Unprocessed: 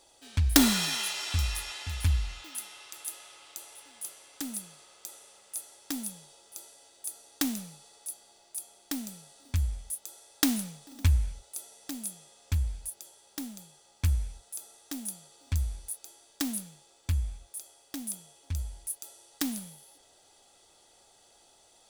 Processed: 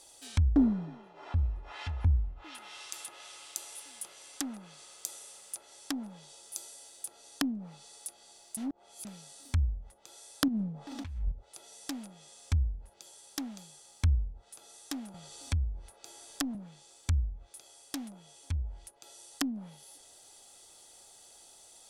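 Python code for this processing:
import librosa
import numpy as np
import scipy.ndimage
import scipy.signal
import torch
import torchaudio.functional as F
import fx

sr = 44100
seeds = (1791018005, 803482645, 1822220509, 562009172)

y = fx.over_compress(x, sr, threshold_db=-33.0, ratio=-1.0, at=(10.48, 11.32))
y = fx.band_squash(y, sr, depth_pct=40, at=(15.14, 16.55))
y = fx.edit(y, sr, fx.reverse_span(start_s=8.57, length_s=0.48), tone=tone)
y = fx.dynamic_eq(y, sr, hz=920.0, q=0.84, threshold_db=-55.0, ratio=4.0, max_db=5)
y = fx.env_lowpass_down(y, sr, base_hz=340.0, full_db=-28.5)
y = fx.high_shelf(y, sr, hz=5900.0, db=11.5)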